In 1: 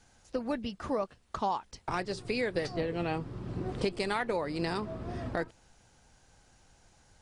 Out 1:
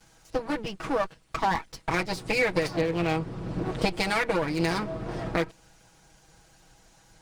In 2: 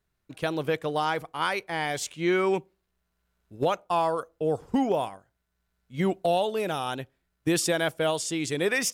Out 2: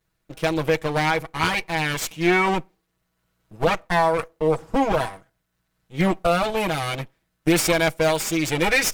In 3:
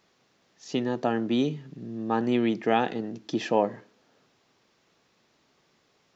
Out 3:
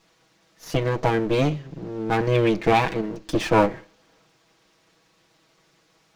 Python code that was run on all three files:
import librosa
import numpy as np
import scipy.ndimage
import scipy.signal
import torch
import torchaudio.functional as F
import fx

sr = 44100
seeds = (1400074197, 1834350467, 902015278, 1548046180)

y = fx.lower_of_two(x, sr, delay_ms=6.2)
y = fx.dynamic_eq(y, sr, hz=2300.0, q=6.3, threshold_db=-54.0, ratio=4.0, max_db=6)
y = F.gain(torch.from_numpy(y), 6.5).numpy()